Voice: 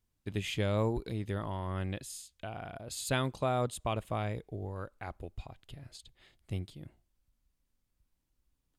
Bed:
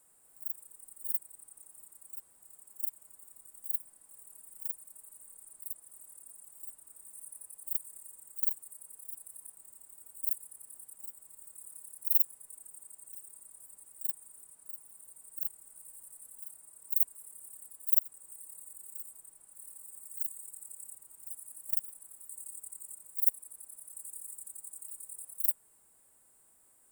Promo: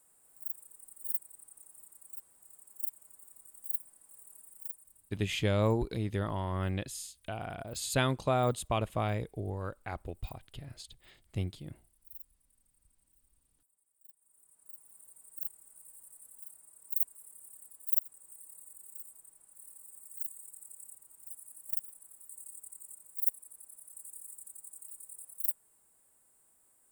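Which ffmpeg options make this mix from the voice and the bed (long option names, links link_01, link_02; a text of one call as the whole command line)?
ffmpeg -i stem1.wav -i stem2.wav -filter_complex "[0:a]adelay=4850,volume=2.5dB[link_01];[1:a]volume=19dB,afade=type=out:start_time=4.37:duration=0.84:silence=0.0794328,afade=type=in:start_time=14.17:duration=0.79:silence=0.1[link_02];[link_01][link_02]amix=inputs=2:normalize=0" out.wav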